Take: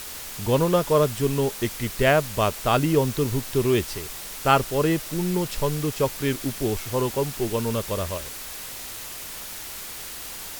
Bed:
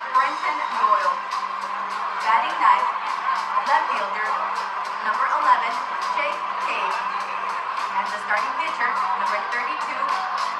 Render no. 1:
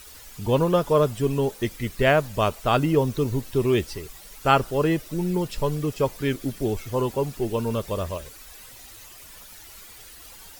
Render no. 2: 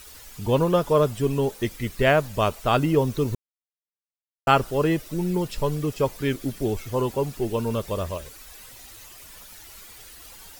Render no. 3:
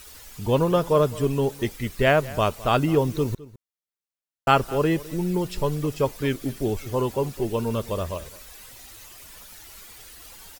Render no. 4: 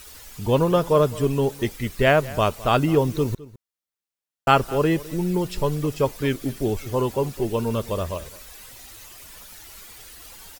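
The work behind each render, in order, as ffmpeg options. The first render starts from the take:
-af "afftdn=nr=12:nf=-37"
-filter_complex "[0:a]asplit=3[a][b][c];[a]atrim=end=3.35,asetpts=PTS-STARTPTS,afade=t=out:st=3.346:d=0.004:c=hsin[d];[b]atrim=start=3.35:end=4.47,asetpts=PTS-STARTPTS,volume=0[e];[c]atrim=start=4.47,asetpts=PTS-STARTPTS,afade=t=in:d=0.004:c=hsin[f];[d][e][f]concat=n=3:v=0:a=1"
-filter_complex "[0:a]asplit=2[a][b];[b]adelay=209.9,volume=-19dB,highshelf=f=4k:g=-4.72[c];[a][c]amix=inputs=2:normalize=0"
-af "volume=1.5dB"

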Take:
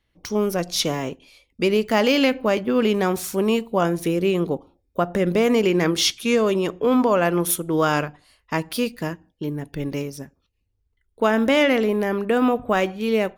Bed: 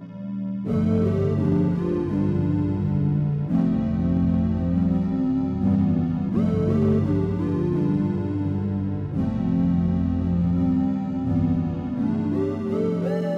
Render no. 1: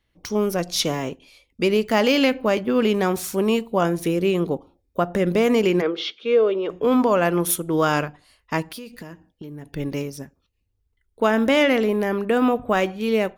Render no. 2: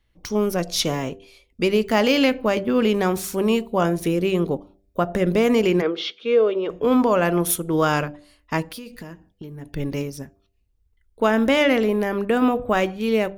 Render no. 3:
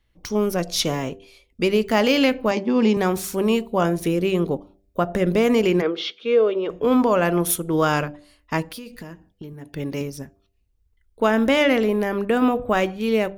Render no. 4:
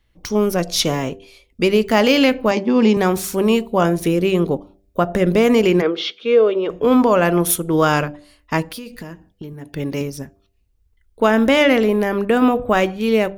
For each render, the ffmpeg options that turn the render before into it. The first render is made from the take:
-filter_complex "[0:a]asplit=3[a][b][c];[a]afade=t=out:st=5.8:d=0.02[d];[b]highpass=420,equalizer=f=450:t=q:w=4:g=8,equalizer=f=730:t=q:w=4:g=-5,equalizer=f=1k:t=q:w=4:g=-8,equalizer=f=1.8k:t=q:w=4:g=-9,equalizer=f=2.6k:t=q:w=4:g=-6,lowpass=f=3.2k:w=0.5412,lowpass=f=3.2k:w=1.3066,afade=t=in:st=5.8:d=0.02,afade=t=out:st=6.69:d=0.02[e];[c]afade=t=in:st=6.69:d=0.02[f];[d][e][f]amix=inputs=3:normalize=0,asettb=1/sr,asplit=3[g][h][i];[g]atrim=end=8.634[j];[h]atrim=start=8.63:end=9.7,asetpts=PTS-STARTPTS,afade=t=in:d=0.004:c=qsin,afade=t=out:st=1.066:d=0.004:c=qsin,acompressor=threshold=-32dB:ratio=20:attack=3.2:release=140:knee=1:detection=peak[k];[i]atrim=start=9.696[l];[j][k]acrossfade=d=0.004:c1=hsin:c2=qsin[m];[m][l]acrossfade=d=0.004:c1=qsin:c2=hsin"
-af "lowshelf=f=72:g=9,bandreject=f=98.06:t=h:w=4,bandreject=f=196.12:t=h:w=4,bandreject=f=294.18:t=h:w=4,bandreject=f=392.24:t=h:w=4,bandreject=f=490.3:t=h:w=4,bandreject=f=588.36:t=h:w=4,bandreject=f=686.42:t=h:w=4"
-filter_complex "[0:a]asettb=1/sr,asplit=3[a][b][c];[a]atrim=end=2.514[d];[b]atrim=start=2.51:end=2.97,asetpts=PTS-STARTPTS,afade=t=in:d=0.004:c=qsin,afade=t=out:st=0.456:d=0.004:c=qsin,highpass=220,equalizer=f=220:t=q:w=4:g=7,equalizer=f=580:t=q:w=4:g=-6,equalizer=f=880:t=q:w=4:g=9,equalizer=f=1.4k:t=q:w=4:g=-10,equalizer=f=3.1k:t=q:w=4:g=-4,equalizer=f=5.4k:t=q:w=4:g=8,lowpass=f=7.5k:w=0.5412,lowpass=f=7.5k:w=1.3066[e];[c]atrim=start=2.966[f];[d][e]acrossfade=d=0.004:c1=hsin:c2=qsin[g];[g][f]acrossfade=d=0.004:c1=qsin:c2=hsin,asettb=1/sr,asplit=3[h][i][j];[h]atrim=end=9.534[k];[i]atrim=start=9.53:end=10.01,asetpts=PTS-STARTPTS,afade=t=in:d=0.004:c=qsin,afade=t=out:st=0.476:d=0.004:c=qsin,highpass=f=140:p=1[l];[j]atrim=start=10.006[m];[k][l]acrossfade=d=0.004:c1=hsin:c2=qsin[n];[n][m]acrossfade=d=0.004:c1=qsin:c2=hsin"
-af "volume=4dB,alimiter=limit=-3dB:level=0:latency=1"

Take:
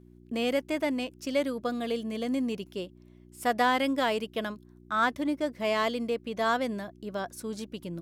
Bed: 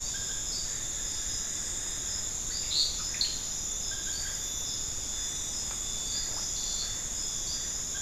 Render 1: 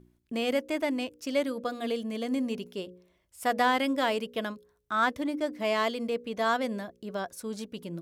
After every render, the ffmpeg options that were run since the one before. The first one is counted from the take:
-af "bandreject=f=60:t=h:w=4,bandreject=f=120:t=h:w=4,bandreject=f=180:t=h:w=4,bandreject=f=240:t=h:w=4,bandreject=f=300:t=h:w=4,bandreject=f=360:t=h:w=4,bandreject=f=420:t=h:w=4,bandreject=f=480:t=h:w=4,bandreject=f=540:t=h:w=4"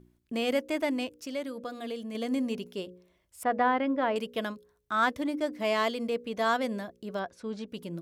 -filter_complex "[0:a]asettb=1/sr,asplit=3[a][b][c];[a]atrim=end=1.124[d];[b]atrim=start=1.12:end=2.15,asetpts=PTS-STARTPTS,afade=t=in:d=0.004:c=qsin,afade=t=out:st=1.026:d=0.004:c=qsin,acompressor=threshold=-42dB:ratio=1.5:attack=3.2:release=140:knee=1:detection=peak[e];[c]atrim=start=2.146[f];[d][e]acrossfade=d=0.004:c1=hsin:c2=qsin[g];[g][f]acrossfade=d=0.004:c1=qsin:c2=hsin,asettb=1/sr,asplit=3[h][i][j];[h]atrim=end=3.434[k];[i]atrim=start=3.43:end=4.16,asetpts=PTS-STARTPTS,afade=t=in:d=0.004:c=qsin,afade=t=out:st=0.726:d=0.004:c=qsin,lowpass=1.7k[l];[j]atrim=start=4.156[m];[k][l]acrossfade=d=0.004:c1=hsin:c2=qsin[n];[n][m]acrossfade=d=0.004:c1=qsin:c2=hsin,asettb=1/sr,asplit=3[o][p][q];[o]atrim=end=7.194[r];[p]atrim=start=7.19:end=7.68,asetpts=PTS-STARTPTS,afade=t=in:d=0.004:c=qsin,afade=t=out:st=0.486:d=0.004:c=qsin,lowpass=3.7k[s];[q]atrim=start=7.676[t];[r][s]acrossfade=d=0.004:c1=hsin:c2=qsin[u];[u][t]acrossfade=d=0.004:c1=qsin:c2=hsin"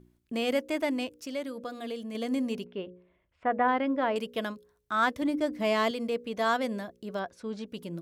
-filter_complex "[0:a]asplit=3[a][b][c];[a]afade=t=out:st=2.64:d=0.02[d];[b]lowpass=f=2.8k:w=0.5412,lowpass=f=2.8k:w=1.3066,afade=t=in:st=2.64:d=0.02,afade=t=out:st=3.67:d=0.02[e];[c]afade=t=in:st=3.67:d=0.02[f];[d][e][f]amix=inputs=3:normalize=0,asettb=1/sr,asplit=3[g][h][i];[g]atrim=end=5.224[j];[h]atrim=start=5.22:end=5.91,asetpts=PTS-STARTPTS,afade=t=in:d=0.004:c=qsin,afade=t=out:st=0.686:d=0.004:c=qsin,lowshelf=f=190:g=10[k];[i]atrim=start=5.906[l];[j][k]acrossfade=d=0.004:c1=hsin:c2=qsin[m];[m][l]acrossfade=d=0.004:c1=qsin:c2=hsin"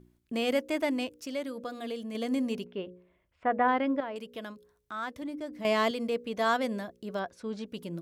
-filter_complex "[0:a]asettb=1/sr,asplit=3[a][b][c];[a]atrim=end=4.004[d];[b]atrim=start=4:end=5.65,asetpts=PTS-STARTPTS,afade=t=in:d=0.004:c=qsin,afade=t=out:st=1.646:d=0.004:c=qsin,acompressor=threshold=-50dB:ratio=1.5:attack=3.2:release=140:knee=1:detection=peak[e];[c]atrim=start=5.646[f];[d][e]acrossfade=d=0.004:c1=hsin:c2=qsin[g];[g][f]acrossfade=d=0.004:c1=qsin:c2=hsin"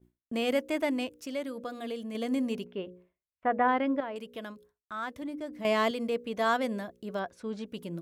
-af "agate=range=-33dB:threshold=-53dB:ratio=3:detection=peak,equalizer=f=4.9k:t=o:w=0.77:g=-3"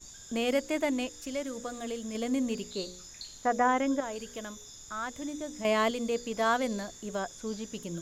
-filter_complex "[1:a]volume=-15dB[a];[0:a][a]amix=inputs=2:normalize=0"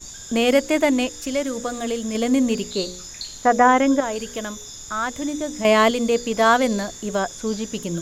-af "volume=11dB"

